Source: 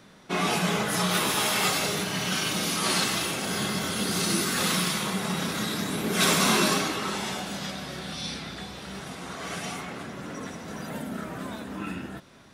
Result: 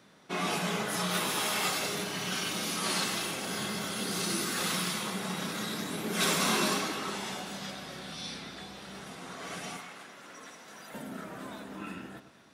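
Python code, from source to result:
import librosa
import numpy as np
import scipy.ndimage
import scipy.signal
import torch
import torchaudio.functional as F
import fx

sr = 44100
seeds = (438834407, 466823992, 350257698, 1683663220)

y = fx.highpass(x, sr, hz=fx.steps((0.0, 150.0), (9.77, 1100.0), (10.94, 190.0)), slope=6)
y = fx.echo_alternate(y, sr, ms=106, hz=1500.0, feedback_pct=51, wet_db=-10.0)
y = y * 10.0 ** (-5.5 / 20.0)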